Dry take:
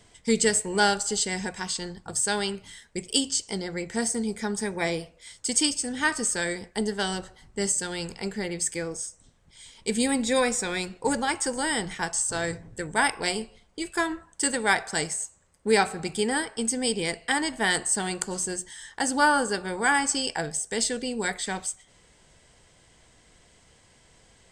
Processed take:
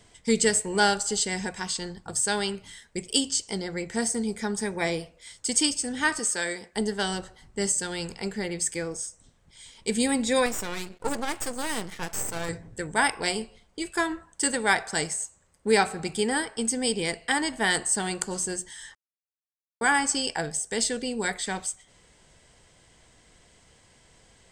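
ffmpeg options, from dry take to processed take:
-filter_complex "[0:a]asettb=1/sr,asplit=3[a][b][c];[a]atrim=end=6.194[d];[b]atrim=start=6.19:end=6.73,asetpts=PTS-STARTPTS,afade=t=in:d=0.004:c=qsin,afade=t=out:st=0.536:d=0.004:c=qsin,highpass=f=370:p=1[e];[c]atrim=start=6.726[f];[d][e]acrossfade=d=0.004:c1=hsin:c2=qsin[g];[g][f]acrossfade=d=0.004:c1=qsin:c2=hsin,asettb=1/sr,asplit=3[h][i][j];[h]atrim=end=10.464[k];[i]atrim=start=10.46:end=12.49,asetpts=PTS-STARTPTS,afade=t=in:d=0.004:c=qsin,afade=t=out:st=2.026:d=0.004:c=qsin,aeval=exprs='max(val(0),0)':c=same[l];[j]atrim=start=12.486[m];[k][l]acrossfade=d=0.004:c1=hsin:c2=qsin[n];[n][m]acrossfade=d=0.004:c1=qsin:c2=hsin,asplit=3[o][p][q];[o]atrim=end=18.95,asetpts=PTS-STARTPTS,afade=t=out:st=18.946:d=0.004:c=hsin[r];[p]atrim=start=18.95:end=19.81,asetpts=PTS-STARTPTS,volume=0[s];[q]atrim=start=19.81,asetpts=PTS-STARTPTS,afade=t=in:d=0.004:c=hsin[t];[r][s][t]concat=n=3:v=0:a=1"

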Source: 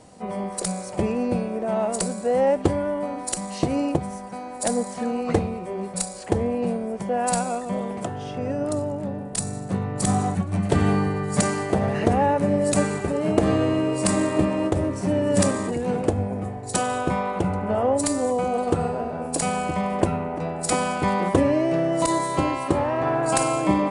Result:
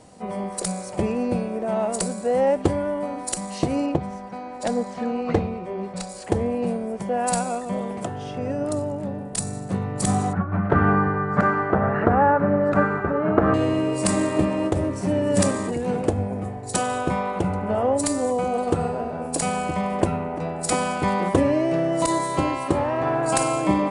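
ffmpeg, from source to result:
-filter_complex "[0:a]asettb=1/sr,asplit=3[a][b][c];[a]atrim=end=3.864[d];[b]atrim=start=3.86:end=6.09,asetpts=PTS-STARTPTS,afade=t=in:d=0.004:c=qsin,afade=t=out:st=2.226:d=0.004:c=qsin,lowpass=4.5k[e];[c]atrim=start=6.086[f];[d][e]acrossfade=d=0.004:c1=hsin:c2=qsin[g];[g][f]acrossfade=d=0.004:c1=qsin:c2=hsin,asettb=1/sr,asplit=3[h][i][j];[h]atrim=end=10.334[k];[i]atrim=start=10.33:end=13.54,asetpts=PTS-STARTPTS,afade=t=in:d=0.004:c=qsin,afade=t=out:st=3.206:d=0.004:c=qsin,lowpass=f=1.4k:t=q:w=4.4[l];[j]atrim=start=13.536[m];[k][l]acrossfade=d=0.004:c1=hsin:c2=qsin[n];[n][m]acrossfade=d=0.004:c1=qsin:c2=hsin"

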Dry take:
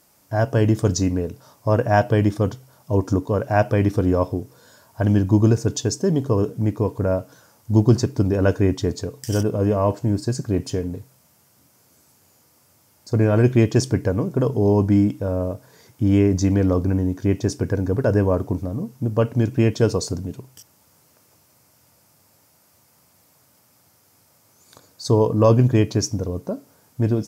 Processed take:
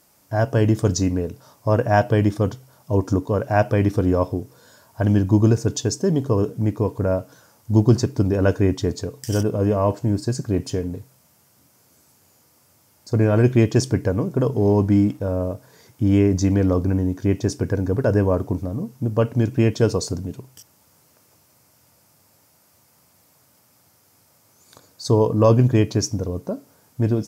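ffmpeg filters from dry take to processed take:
-filter_complex "[0:a]asettb=1/sr,asplit=3[a][b][c];[a]atrim=end=14.564[d];[b]atrim=start=14.56:end=15.23,asetpts=PTS-STARTPTS,afade=t=in:d=0.004:c=qsin,afade=t=out:st=0.666:d=0.004:c=qsin,aeval=exprs='sgn(val(0))*max(abs(val(0))-0.00251,0)':c=same[e];[c]atrim=start=15.226[f];[d][e]acrossfade=d=0.004:c1=hsin:c2=qsin[g];[g][f]acrossfade=d=0.004:c1=qsin:c2=hsin"

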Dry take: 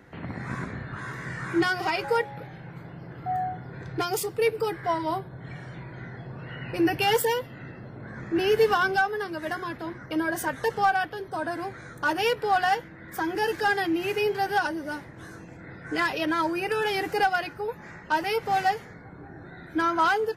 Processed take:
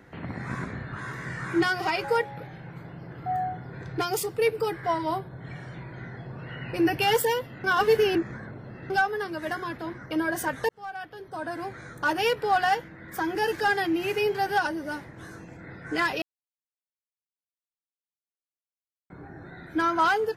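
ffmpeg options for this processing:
-filter_complex "[0:a]asplit=6[a][b][c][d][e][f];[a]atrim=end=7.642[g];[b]atrim=start=7.638:end=8.902,asetpts=PTS-STARTPTS,areverse[h];[c]atrim=start=8.898:end=10.69,asetpts=PTS-STARTPTS,afade=t=out:st=1.788:d=0.004:c=hsin[i];[d]atrim=start=10.69:end=16.22,asetpts=PTS-STARTPTS,afade=t=in:d=1.1,afade=t=out:st=5.526:d=0.004:c=hsin[j];[e]atrim=start=16.22:end=19.1,asetpts=PTS-STARTPTS,volume=0[k];[f]atrim=start=19.1,asetpts=PTS-STARTPTS,afade=t=in:d=0.004:c=hsin[l];[g][h]acrossfade=d=0.004:c1=hsin:c2=hsin[m];[i][j][k][l]concat=n=4:v=0:a=1[n];[m][n]acrossfade=d=0.004:c1=hsin:c2=hsin"

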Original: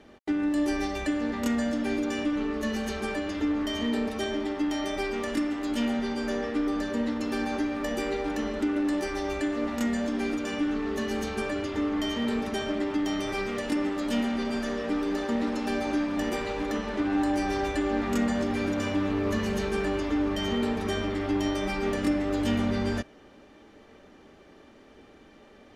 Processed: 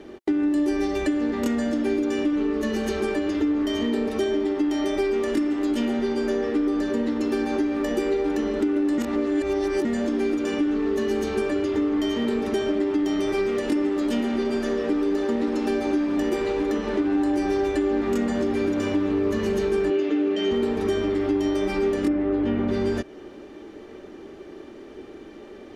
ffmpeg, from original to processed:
-filter_complex "[0:a]asettb=1/sr,asplit=3[a][b][c];[a]atrim=end=19.904[d];[b]atrim=start=19.9:end=20.51,asetpts=PTS-STARTPTS,afade=t=in:d=0.004:c=qsin,afade=t=out:st=0.606:d=0.004:c=qsin,highpass=220,equalizer=f=390:t=q:w=4:g=3,equalizer=f=1k:t=q:w=4:g=-9,equalizer=f=2.7k:t=q:w=4:g=6,equalizer=f=5.3k:t=q:w=4:g=-5,lowpass=f=6.7k:w=0.5412,lowpass=f=6.7k:w=1.3066[e];[c]atrim=start=20.506[f];[d][e]acrossfade=d=0.004:c1=hsin:c2=qsin[g];[g][f]acrossfade=d=0.004:c1=qsin:c2=hsin,asplit=3[h][i][j];[h]afade=t=out:st=22.07:d=0.02[k];[i]lowpass=2.2k,afade=t=in:st=22.07:d=0.02,afade=t=out:st=22.67:d=0.02[l];[j]afade=t=in:st=22.67:d=0.02[m];[k][l][m]amix=inputs=3:normalize=0,asplit=3[n][o][p];[n]atrim=end=8.982[q];[o]atrim=start=8.978:end=9.852,asetpts=PTS-STARTPTS,areverse[r];[p]atrim=start=9.848[s];[q][r]acrossfade=d=0.004:c1=hsin:c2=hsin[t];[t][s]acrossfade=d=0.004:c1=hsin:c2=hsin,equalizer=f=360:t=o:w=0.57:g=12.5,acompressor=threshold=-29dB:ratio=2.5,volume=5.5dB"

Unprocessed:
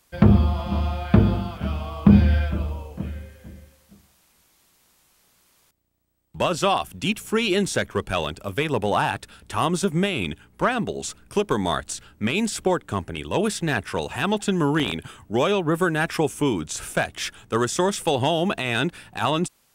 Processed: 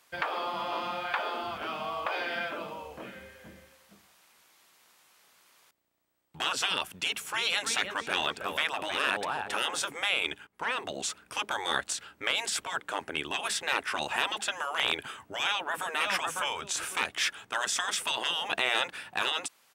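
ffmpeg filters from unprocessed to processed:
-filter_complex "[0:a]asettb=1/sr,asplit=3[a][b][c];[a]atrim=end=7.024[d];[b]atrim=start=7.02:end=9.81,asetpts=PTS-STARTPTS,afade=t=in:d=0.004:c=qsin,afade=t=out:st=2.786:d=0.004:c=qsin,asplit=2[e][f];[f]adelay=317,lowpass=f=2.8k:p=1,volume=-11.5dB,asplit=2[g][h];[h]adelay=317,lowpass=f=2.8k:p=1,volume=0.36,asplit=2[i][j];[j]adelay=317,lowpass=f=2.8k:p=1,volume=0.36,asplit=2[k][l];[l]adelay=317,lowpass=f=2.8k:p=1,volume=0.36[m];[e][g][i][k][m]amix=inputs=5:normalize=0,atrim=end_sample=123039[n];[c]atrim=start=9.806[o];[d][n]acrossfade=d=0.004:c1=hsin:c2=qsin[p];[p][o]acrossfade=d=0.004:c1=qsin:c2=hsin,asplit=2[q][r];[r]afade=t=in:st=15.45:d=0.01,afade=t=out:st=15.94:d=0.01,aecho=0:1:550|1100:0.421697|0.0421697[s];[q][s]amix=inputs=2:normalize=0,asplit=2[t][u];[t]atrim=end=10.47,asetpts=PTS-STARTPTS,afade=t=out:st=10.466:d=0.004:c=hsin:silence=0.141254[v];[u]atrim=start=10.47,asetpts=PTS-STARTPTS,afade=t=in:d=0.41:silence=0.141254[w];[v][w]concat=n=2:v=0:a=1,afftfilt=real='re*lt(hypot(re,im),0.178)':imag='im*lt(hypot(re,im),0.178)':win_size=1024:overlap=0.75,highpass=f=1.2k:p=1,highshelf=f=3.6k:g=-11,volume=7dB"

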